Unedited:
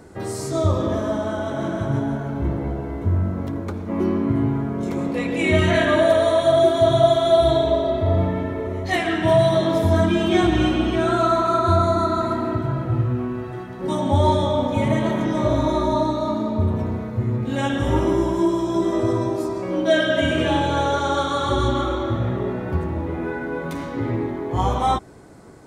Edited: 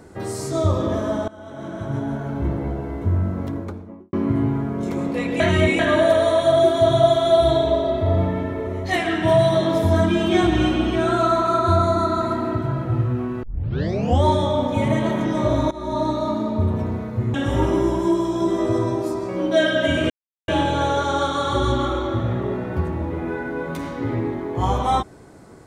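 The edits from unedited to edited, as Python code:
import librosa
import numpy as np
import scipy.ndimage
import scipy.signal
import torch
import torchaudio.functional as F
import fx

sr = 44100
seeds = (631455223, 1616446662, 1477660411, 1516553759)

y = fx.studio_fade_out(x, sr, start_s=3.47, length_s=0.66)
y = fx.edit(y, sr, fx.fade_in_from(start_s=1.28, length_s=1.04, floor_db=-19.5),
    fx.reverse_span(start_s=5.4, length_s=0.39),
    fx.tape_start(start_s=13.43, length_s=0.8),
    fx.fade_in_from(start_s=15.71, length_s=0.38, floor_db=-19.5),
    fx.cut(start_s=17.34, length_s=0.34),
    fx.insert_silence(at_s=20.44, length_s=0.38), tone=tone)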